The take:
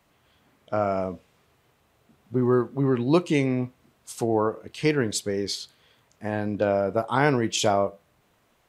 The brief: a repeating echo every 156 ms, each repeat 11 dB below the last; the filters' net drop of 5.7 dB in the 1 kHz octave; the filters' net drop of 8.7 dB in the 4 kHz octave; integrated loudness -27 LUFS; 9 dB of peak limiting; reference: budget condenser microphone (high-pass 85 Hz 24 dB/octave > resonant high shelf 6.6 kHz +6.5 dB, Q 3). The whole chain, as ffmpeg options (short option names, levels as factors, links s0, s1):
-af "equalizer=f=1000:t=o:g=-8,equalizer=f=4000:t=o:g=-7.5,alimiter=limit=0.1:level=0:latency=1,highpass=f=85:w=0.5412,highpass=f=85:w=1.3066,highshelf=f=6600:t=q:w=3:g=6.5,aecho=1:1:156|312|468:0.282|0.0789|0.0221,volume=1.5"